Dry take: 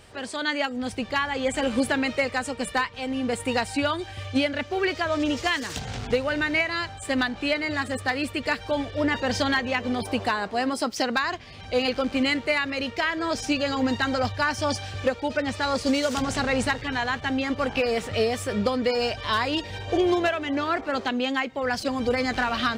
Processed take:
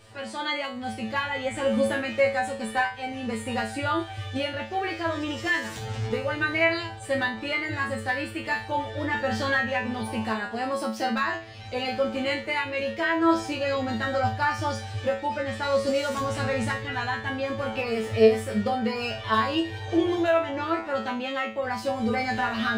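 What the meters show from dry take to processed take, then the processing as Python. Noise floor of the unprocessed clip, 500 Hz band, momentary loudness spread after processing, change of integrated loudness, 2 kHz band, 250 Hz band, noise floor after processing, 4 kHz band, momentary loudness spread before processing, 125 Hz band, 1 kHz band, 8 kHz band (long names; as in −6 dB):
−41 dBFS, 0.0 dB, 7 LU, −1.0 dB, −1.0 dB, −2.5 dB, −38 dBFS, −4.5 dB, 4 LU, +1.5 dB, 0.0 dB, −6.0 dB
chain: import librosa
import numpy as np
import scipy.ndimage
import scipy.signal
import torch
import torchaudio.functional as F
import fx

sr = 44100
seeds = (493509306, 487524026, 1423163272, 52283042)

y = fx.hpss(x, sr, part='harmonic', gain_db=5)
y = fx.comb_fb(y, sr, f0_hz=110.0, decay_s=0.34, harmonics='all', damping=0.0, mix_pct=100)
y = fx.dynamic_eq(y, sr, hz=5200.0, q=0.87, threshold_db=-52.0, ratio=4.0, max_db=-6)
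y = y * librosa.db_to_amplitude(7.0)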